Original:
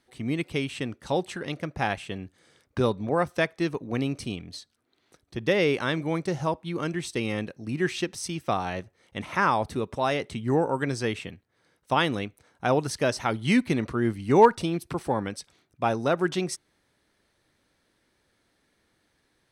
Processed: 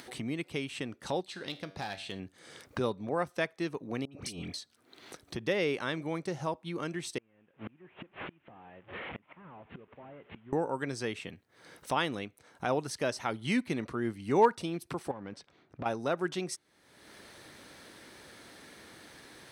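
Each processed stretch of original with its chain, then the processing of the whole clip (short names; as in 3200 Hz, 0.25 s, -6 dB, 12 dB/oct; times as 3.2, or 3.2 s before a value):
1.21–2.2 bell 4100 Hz +13 dB 0.64 oct + hard clip -20.5 dBFS + resonator 96 Hz, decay 0.4 s
4.05–4.54 negative-ratio compressor -40 dBFS + dispersion highs, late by 74 ms, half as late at 1400 Hz
7.18–10.53 delta modulation 16 kbps, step -38.5 dBFS + flipped gate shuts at -30 dBFS, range -34 dB
15.11–15.86 sample leveller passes 2 + compressor 10:1, threshold -32 dBFS + tape spacing loss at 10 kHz 26 dB
whole clip: HPF 160 Hz 6 dB/oct; upward compressor, threshold -25 dBFS; gain -6.5 dB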